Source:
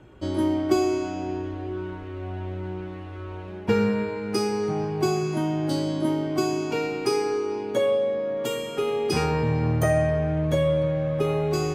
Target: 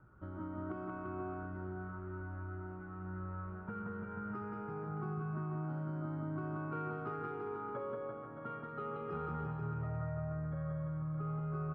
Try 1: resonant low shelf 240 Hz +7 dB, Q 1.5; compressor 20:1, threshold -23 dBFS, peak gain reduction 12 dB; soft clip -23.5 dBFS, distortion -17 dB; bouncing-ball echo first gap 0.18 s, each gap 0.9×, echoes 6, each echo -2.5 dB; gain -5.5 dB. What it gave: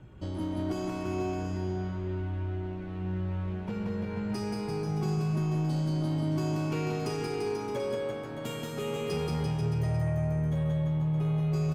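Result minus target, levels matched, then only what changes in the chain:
1000 Hz band -6.5 dB
add after compressor: ladder low-pass 1400 Hz, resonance 85%

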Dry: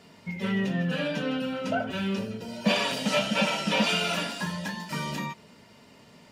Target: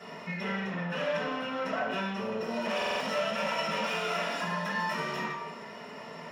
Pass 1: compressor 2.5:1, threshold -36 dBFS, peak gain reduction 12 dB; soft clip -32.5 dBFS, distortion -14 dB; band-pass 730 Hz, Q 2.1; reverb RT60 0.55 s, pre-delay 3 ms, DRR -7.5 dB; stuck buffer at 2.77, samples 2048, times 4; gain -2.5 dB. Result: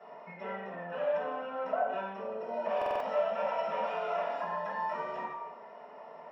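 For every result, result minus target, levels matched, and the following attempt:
soft clip: distortion -6 dB; 1000 Hz band +2.0 dB
compressor 2.5:1, threshold -36 dBFS, peak gain reduction 12 dB; soft clip -39.5 dBFS, distortion -8 dB; band-pass 730 Hz, Q 2.1; reverb RT60 0.55 s, pre-delay 3 ms, DRR -7.5 dB; stuck buffer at 2.77, samples 2048, times 4; gain -2.5 dB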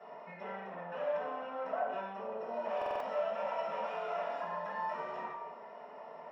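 1000 Hz band +2.5 dB
compressor 2.5:1, threshold -36 dBFS, peak gain reduction 12 dB; soft clip -39.5 dBFS, distortion -8 dB; reverb RT60 0.55 s, pre-delay 3 ms, DRR -7.5 dB; stuck buffer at 2.77, samples 2048, times 4; gain -2.5 dB

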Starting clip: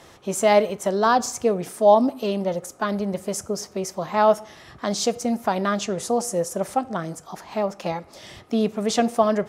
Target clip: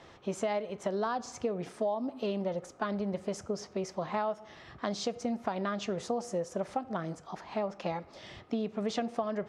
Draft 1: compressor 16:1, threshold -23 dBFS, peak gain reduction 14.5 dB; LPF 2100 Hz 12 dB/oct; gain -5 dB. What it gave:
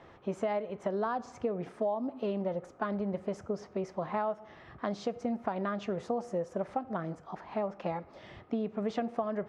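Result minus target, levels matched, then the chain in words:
4000 Hz band -8.0 dB
compressor 16:1, threshold -23 dBFS, peak gain reduction 14.5 dB; LPF 4300 Hz 12 dB/oct; gain -5 dB

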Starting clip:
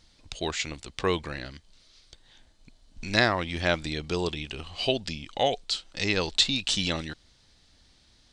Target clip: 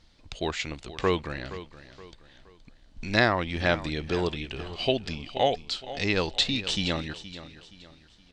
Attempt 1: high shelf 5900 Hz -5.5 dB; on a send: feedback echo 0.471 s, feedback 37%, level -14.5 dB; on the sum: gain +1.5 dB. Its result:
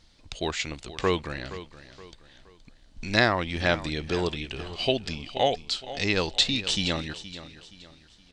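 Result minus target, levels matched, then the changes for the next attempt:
8000 Hz band +3.5 dB
change: high shelf 5900 Hz -13.5 dB

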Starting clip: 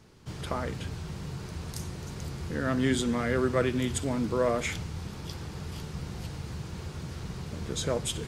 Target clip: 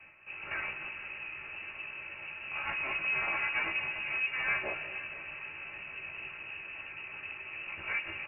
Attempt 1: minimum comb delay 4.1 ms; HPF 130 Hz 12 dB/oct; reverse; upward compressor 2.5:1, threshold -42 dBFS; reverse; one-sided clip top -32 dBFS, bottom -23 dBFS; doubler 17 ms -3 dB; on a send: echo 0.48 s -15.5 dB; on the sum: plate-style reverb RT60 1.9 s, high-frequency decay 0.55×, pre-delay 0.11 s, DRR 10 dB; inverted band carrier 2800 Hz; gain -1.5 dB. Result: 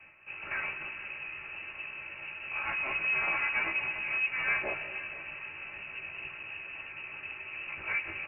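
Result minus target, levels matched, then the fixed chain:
one-sided clip: distortion -4 dB
minimum comb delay 4.1 ms; HPF 130 Hz 12 dB/oct; reverse; upward compressor 2.5:1, threshold -42 dBFS; reverse; one-sided clip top -41 dBFS, bottom -23 dBFS; doubler 17 ms -3 dB; on a send: echo 0.48 s -15.5 dB; on the sum: plate-style reverb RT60 1.9 s, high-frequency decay 0.55×, pre-delay 0.11 s, DRR 10 dB; inverted band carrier 2800 Hz; gain -1.5 dB

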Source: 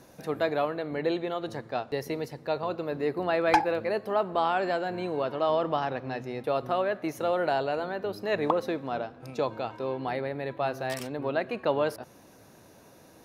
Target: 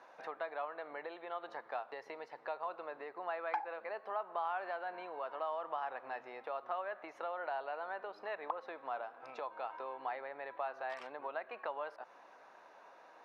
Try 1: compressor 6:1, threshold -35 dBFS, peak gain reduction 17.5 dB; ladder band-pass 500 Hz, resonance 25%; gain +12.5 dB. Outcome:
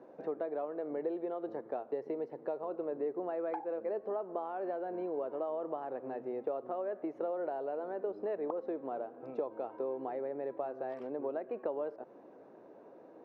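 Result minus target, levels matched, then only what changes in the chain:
1000 Hz band -7.0 dB
change: ladder band-pass 1200 Hz, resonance 25%

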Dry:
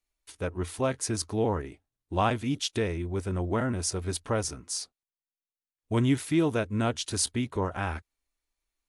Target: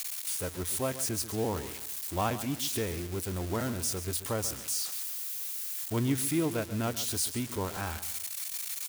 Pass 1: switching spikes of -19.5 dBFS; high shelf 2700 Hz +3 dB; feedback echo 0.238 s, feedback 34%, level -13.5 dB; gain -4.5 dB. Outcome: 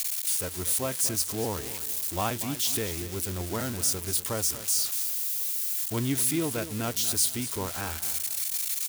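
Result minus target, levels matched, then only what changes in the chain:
echo 0.102 s late; 2000 Hz band -2.5 dB
change: high shelf 2700 Hz -4 dB; change: feedback echo 0.136 s, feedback 34%, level -13.5 dB

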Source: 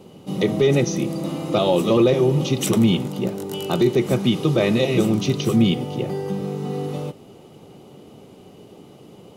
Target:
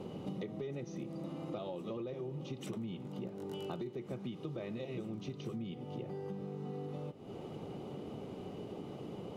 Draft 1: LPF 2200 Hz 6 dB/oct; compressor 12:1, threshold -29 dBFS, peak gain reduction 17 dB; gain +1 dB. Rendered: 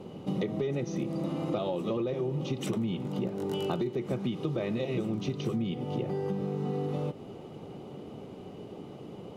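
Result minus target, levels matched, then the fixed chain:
compressor: peak gain reduction -10 dB
LPF 2200 Hz 6 dB/oct; compressor 12:1, threshold -40 dBFS, peak gain reduction 27 dB; gain +1 dB

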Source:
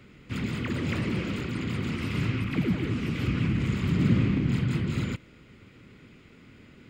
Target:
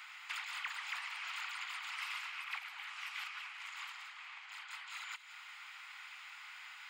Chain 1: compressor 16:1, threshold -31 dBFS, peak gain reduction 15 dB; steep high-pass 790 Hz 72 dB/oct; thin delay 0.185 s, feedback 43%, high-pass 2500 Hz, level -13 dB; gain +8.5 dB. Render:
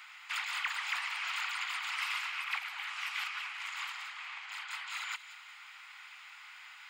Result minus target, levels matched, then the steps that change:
compressor: peak gain reduction -6.5 dB
change: compressor 16:1, threshold -38 dBFS, peak gain reduction 21.5 dB

